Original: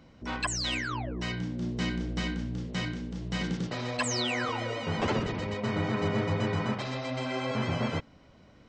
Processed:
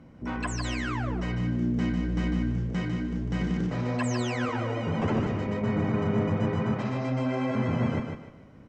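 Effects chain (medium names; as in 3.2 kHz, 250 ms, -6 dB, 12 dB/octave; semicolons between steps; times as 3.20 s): graphic EQ 125/250/4000 Hz +4/+4/-11 dB; in parallel at +1 dB: peak limiter -25 dBFS, peak gain reduction 10 dB; on the sum: bit crusher 12-bit; distance through air 54 m; feedback delay 150 ms, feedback 28%, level -5.5 dB; on a send at -19 dB: reverberation, pre-delay 3 ms; on the sum: trim -5 dB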